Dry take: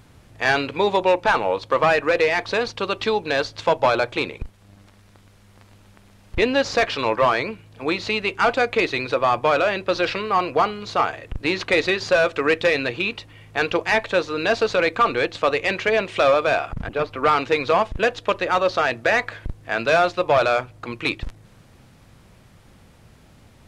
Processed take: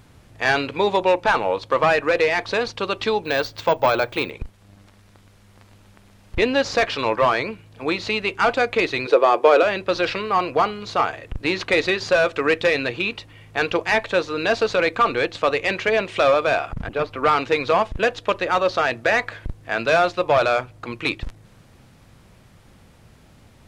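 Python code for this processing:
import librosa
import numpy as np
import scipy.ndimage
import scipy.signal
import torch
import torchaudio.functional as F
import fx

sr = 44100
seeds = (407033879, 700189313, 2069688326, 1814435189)

y = fx.resample_bad(x, sr, factor=2, down='none', up='hold', at=(3.24, 4.31))
y = fx.highpass_res(y, sr, hz=400.0, q=3.6, at=(9.07, 9.63))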